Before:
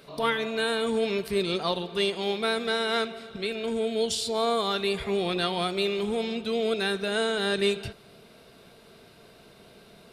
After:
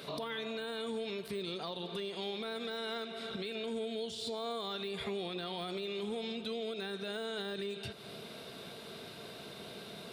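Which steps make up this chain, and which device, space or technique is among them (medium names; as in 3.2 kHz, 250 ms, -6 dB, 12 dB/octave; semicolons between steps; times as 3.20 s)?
broadcast voice chain (high-pass 100 Hz; de-esser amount 90%; compression 4:1, threshold -41 dBFS, peak gain reduction 16 dB; peaking EQ 3.6 kHz +5.5 dB 0.4 oct; peak limiter -34.5 dBFS, peak gain reduction 6.5 dB); trim +4.5 dB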